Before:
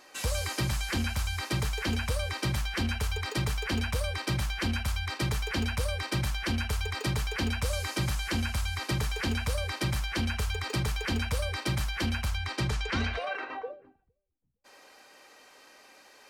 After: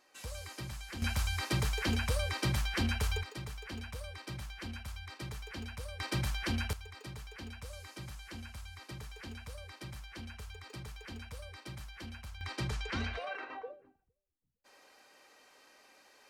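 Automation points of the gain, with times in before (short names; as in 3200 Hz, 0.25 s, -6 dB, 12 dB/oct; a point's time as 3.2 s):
-13 dB
from 1.02 s -2 dB
from 3.23 s -13 dB
from 6 s -4 dB
from 6.73 s -16 dB
from 12.41 s -6.5 dB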